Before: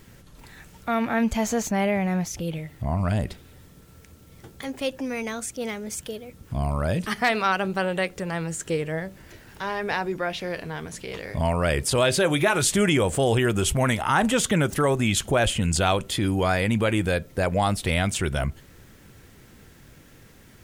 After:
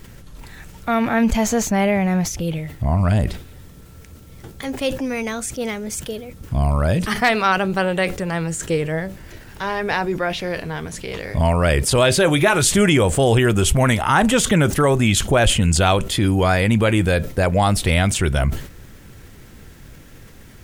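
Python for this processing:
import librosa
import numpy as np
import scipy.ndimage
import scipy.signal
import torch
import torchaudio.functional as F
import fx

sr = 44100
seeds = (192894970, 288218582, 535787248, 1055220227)

y = fx.low_shelf(x, sr, hz=63.0, db=9.0)
y = fx.sustainer(y, sr, db_per_s=110.0)
y = F.gain(torch.from_numpy(y), 5.0).numpy()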